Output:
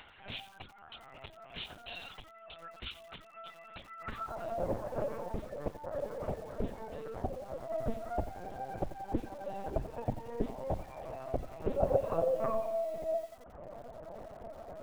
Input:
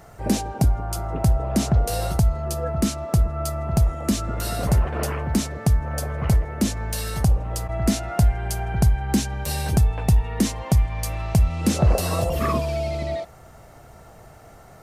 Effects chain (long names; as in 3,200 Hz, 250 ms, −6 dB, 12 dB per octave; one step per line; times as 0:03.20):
0:04.78–0:06.42: high-pass filter 400 Hz → 120 Hz 12 dB per octave
reverb reduction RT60 0.81 s
upward compression, threshold −29 dBFS
band-pass filter sweep 3,100 Hz → 540 Hz, 0:03.80–0:04.51
linear-prediction vocoder at 8 kHz pitch kept
feedback echo at a low word length 88 ms, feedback 55%, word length 8 bits, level −12.5 dB